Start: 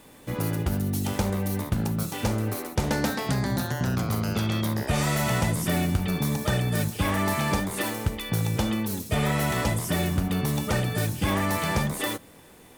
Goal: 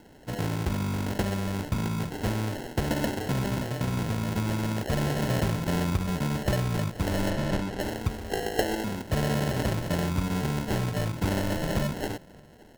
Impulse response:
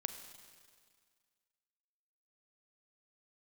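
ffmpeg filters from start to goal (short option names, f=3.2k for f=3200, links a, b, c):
-filter_complex "[0:a]asettb=1/sr,asplit=3[a][b][c];[a]atrim=end=8.304[d];[b]atrim=start=8.3:end=8.84,asetpts=PTS-STARTPTS,afade=t=in:d=0.004:c=qsin,afade=t=out:st=0.536:d=0.004:c=qsin,highpass=f=410:t=q:w=4.9[e];[c]atrim=start=8.836[f];[d][e]acrossfade=d=0.004:c1=hsin:c2=qsin[g];[g][f]acrossfade=d=0.004:c1=qsin:c2=hsin,acrusher=samples=37:mix=1:aa=0.000001,asettb=1/sr,asplit=3[h][i][j];[h]atrim=end=7.304[k];[i]atrim=start=7.3:end=7.8,asetpts=PTS-STARTPTS,afade=t=in:d=0.004:c=qsin,afade=t=out:st=0.496:d=0.004:c=qsin,highshelf=f=9k:g=-10.5[l];[j]atrim=start=7.796[m];[k][l]acrossfade=d=0.004:c1=hsin:c2=qsin[n];[n][m]acrossfade=d=0.004:c1=qsin:c2=hsin,asplit=2[o][p];[p]adelay=583.1,volume=-27dB,highshelf=f=4k:g=-13.1[q];[o][q]amix=inputs=2:normalize=0,volume=-2dB"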